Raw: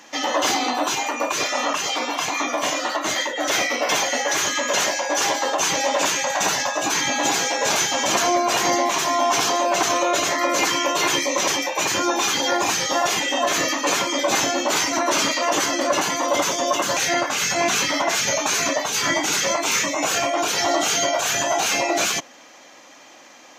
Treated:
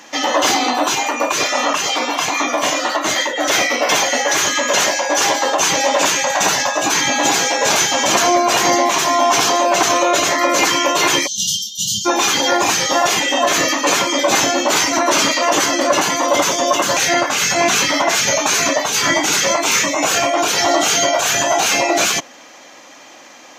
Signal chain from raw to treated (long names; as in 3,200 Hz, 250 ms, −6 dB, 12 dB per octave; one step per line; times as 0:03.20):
time-frequency box erased 0:11.27–0:12.06, 230–2,800 Hz
level +5.5 dB